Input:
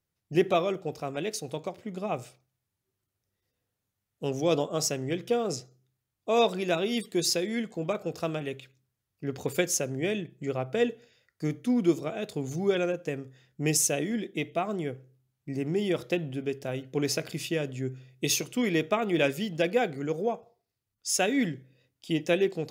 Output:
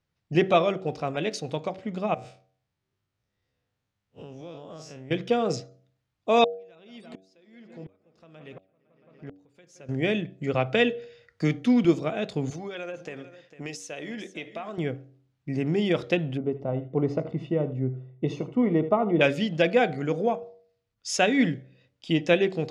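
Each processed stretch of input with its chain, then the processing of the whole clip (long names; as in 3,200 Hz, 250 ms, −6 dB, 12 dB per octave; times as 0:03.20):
0:02.14–0:05.11: spectrum smeared in time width 87 ms + downward compressor, threshold −43 dBFS
0:06.44–0:09.89: delay with a low-pass on its return 169 ms, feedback 77%, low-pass 2,100 Hz, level −16 dB + downward compressor 2 to 1, threshold −46 dBFS + tremolo with a ramp in dB swelling 1.4 Hz, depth 35 dB
0:10.54–0:11.85: dynamic equaliser 2,900 Hz, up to +8 dB, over −49 dBFS, Q 0.95 + multiband upward and downward compressor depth 40%
0:12.50–0:14.78: high-pass filter 500 Hz 6 dB per octave + downward compressor, threshold −36 dBFS + single-tap delay 451 ms −14.5 dB
0:16.37–0:19.21: Savitzky-Golay smoothing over 65 samples + single-tap delay 77 ms −14.5 dB
whole clip: low-pass filter 4,500 Hz 12 dB per octave; parametric band 380 Hz −4 dB 0.42 octaves; hum removal 94.84 Hz, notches 8; level +5.5 dB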